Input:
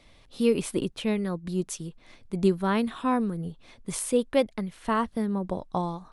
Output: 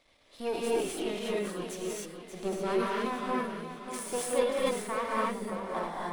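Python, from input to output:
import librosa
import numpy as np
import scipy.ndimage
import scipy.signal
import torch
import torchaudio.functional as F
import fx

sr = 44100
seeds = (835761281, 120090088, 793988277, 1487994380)

y = np.where(x < 0.0, 10.0 ** (-12.0 / 20.0) * x, x)
y = fx.bass_treble(y, sr, bass_db=-12, treble_db=-1)
y = fx.echo_feedback(y, sr, ms=585, feedback_pct=39, wet_db=-9.5)
y = fx.rev_gated(y, sr, seeds[0], gate_ms=310, shape='rising', drr_db=-5.5)
y = fx.sustainer(y, sr, db_per_s=76.0)
y = F.gain(torch.from_numpy(y), -5.0).numpy()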